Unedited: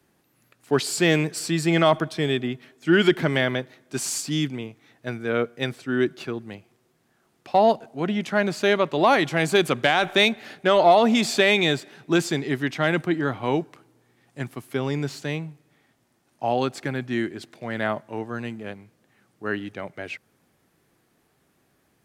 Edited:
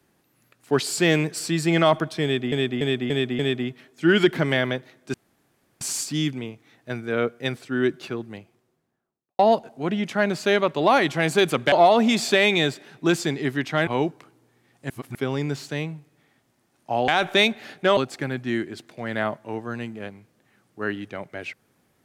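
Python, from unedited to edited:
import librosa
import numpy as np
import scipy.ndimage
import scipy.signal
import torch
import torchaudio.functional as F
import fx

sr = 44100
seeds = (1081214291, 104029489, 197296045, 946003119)

y = fx.studio_fade_out(x, sr, start_s=6.39, length_s=1.17)
y = fx.edit(y, sr, fx.repeat(start_s=2.23, length_s=0.29, count=5),
    fx.insert_room_tone(at_s=3.98, length_s=0.67),
    fx.move(start_s=9.89, length_s=0.89, to_s=16.61),
    fx.cut(start_s=12.93, length_s=0.47),
    fx.reverse_span(start_s=14.43, length_s=0.25), tone=tone)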